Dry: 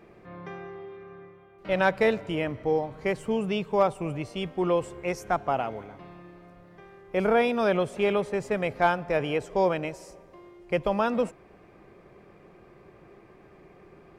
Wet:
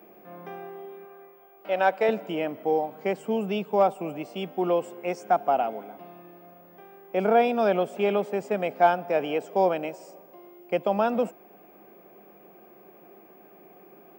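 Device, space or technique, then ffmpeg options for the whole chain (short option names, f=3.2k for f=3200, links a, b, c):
old television with a line whistle: -filter_complex "[0:a]highpass=f=200:w=0.5412,highpass=f=200:w=1.3066,equalizer=f=200:t=q:w=4:g=3,equalizer=f=730:t=q:w=4:g=7,equalizer=f=1.1k:t=q:w=4:g=-4,equalizer=f=1.9k:t=q:w=4:g=-6,equalizer=f=4.1k:t=q:w=4:g=-7,equalizer=f=6.2k:t=q:w=4:g=-5,lowpass=f=8.3k:w=0.5412,lowpass=f=8.3k:w=1.3066,aeval=exprs='val(0)+0.00158*sin(2*PI*15625*n/s)':c=same,asettb=1/sr,asplit=3[a][b][c];[a]atrim=end=1.054[d];[b]atrim=start=1.05:end=2.09,asetpts=PTS-STARTPTS,afade=t=in:d=0.004:c=qsin,afade=t=out:st=1.036:d=0.004:c=qsin,bass=f=250:g=-15,treble=f=4k:g=-2[e];[c]atrim=start=2.086[f];[d][e]acrossfade=d=0.004:c1=hsin:c2=qsin[g];[g][f]acrossfade=d=0.004:c1=qsin:c2=hsin"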